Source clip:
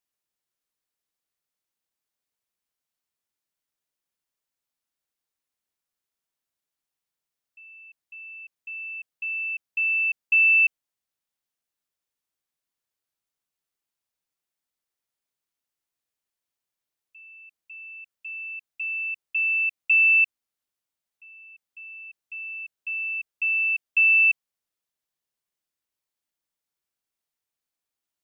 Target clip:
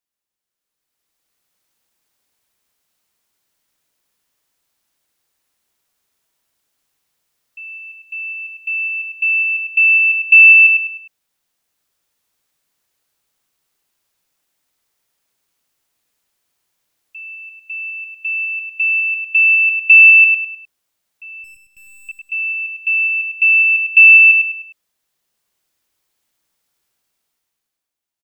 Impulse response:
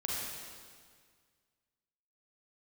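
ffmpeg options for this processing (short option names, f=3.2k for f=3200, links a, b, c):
-filter_complex "[0:a]dynaudnorm=f=120:g=17:m=15dB,asettb=1/sr,asplit=3[a][b][c];[a]atrim=end=21.444[d];[b]atrim=start=21.44:end=22.09,asetpts=PTS-STARTPTS,afade=t=in:d=0.004:c=qsin,afade=t=out:st=0.646:d=0.004:c=qsin,aeval=exprs='(tanh(158*val(0)+0.6)-tanh(0.6))/158':c=same[e];[c]atrim=start=22.086[f];[d][e]acrossfade=d=0.004:c1=hsin:c2=qsin[g];[g][f]acrossfade=d=0.004:c1=qsin:c2=hsin,aecho=1:1:102|204|306|408:0.531|0.186|0.065|0.0228"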